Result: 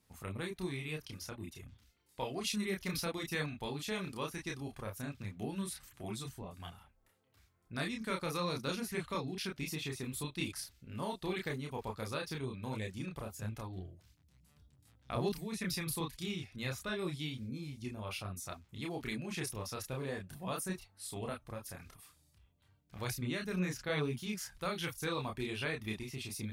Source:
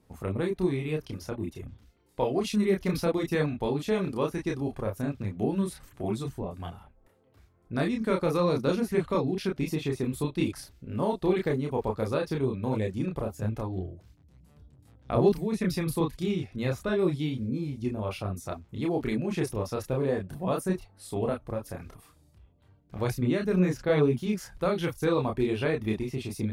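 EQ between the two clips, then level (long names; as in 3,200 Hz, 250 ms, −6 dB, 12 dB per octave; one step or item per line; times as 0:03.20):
guitar amp tone stack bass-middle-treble 5-5-5
low-shelf EQ 85 Hz −6 dB
+7.0 dB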